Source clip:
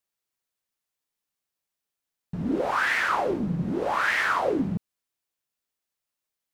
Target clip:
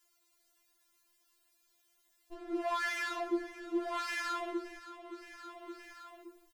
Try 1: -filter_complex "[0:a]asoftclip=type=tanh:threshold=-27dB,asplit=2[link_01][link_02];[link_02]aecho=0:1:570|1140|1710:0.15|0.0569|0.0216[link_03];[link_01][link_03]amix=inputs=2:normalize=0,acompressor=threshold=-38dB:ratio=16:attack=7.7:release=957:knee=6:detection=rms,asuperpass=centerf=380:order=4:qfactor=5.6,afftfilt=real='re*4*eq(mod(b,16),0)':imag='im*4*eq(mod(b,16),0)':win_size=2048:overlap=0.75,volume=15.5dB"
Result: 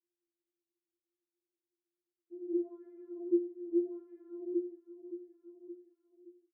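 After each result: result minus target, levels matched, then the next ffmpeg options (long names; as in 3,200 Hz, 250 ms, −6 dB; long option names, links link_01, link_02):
downward compressor: peak gain reduction −8 dB; 500 Hz band +2.5 dB
-filter_complex "[0:a]asoftclip=type=tanh:threshold=-27dB,asplit=2[link_01][link_02];[link_02]aecho=0:1:570|1140|1710:0.15|0.0569|0.0216[link_03];[link_01][link_03]amix=inputs=2:normalize=0,acompressor=threshold=-46.5dB:ratio=16:attack=7.7:release=957:knee=6:detection=rms,asuperpass=centerf=380:order=4:qfactor=5.6,afftfilt=real='re*4*eq(mod(b,16),0)':imag='im*4*eq(mod(b,16),0)':win_size=2048:overlap=0.75,volume=15.5dB"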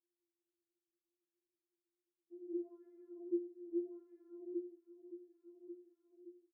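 500 Hz band +3.0 dB
-filter_complex "[0:a]asoftclip=type=tanh:threshold=-27dB,asplit=2[link_01][link_02];[link_02]aecho=0:1:570|1140|1710:0.15|0.0569|0.0216[link_03];[link_01][link_03]amix=inputs=2:normalize=0,acompressor=threshold=-46.5dB:ratio=16:attack=7.7:release=957:knee=6:detection=rms,afftfilt=real='re*4*eq(mod(b,16),0)':imag='im*4*eq(mod(b,16),0)':win_size=2048:overlap=0.75,volume=15.5dB"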